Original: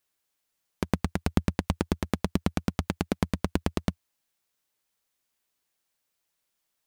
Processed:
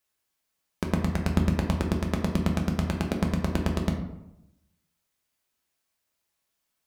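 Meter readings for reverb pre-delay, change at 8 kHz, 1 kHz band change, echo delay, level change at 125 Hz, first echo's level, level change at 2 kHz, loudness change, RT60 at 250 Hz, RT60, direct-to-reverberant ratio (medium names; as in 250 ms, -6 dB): 3 ms, 0.0 dB, +1.0 dB, no echo, +4.0 dB, no echo, +1.5 dB, +2.5 dB, 1.0 s, 0.85 s, 0.5 dB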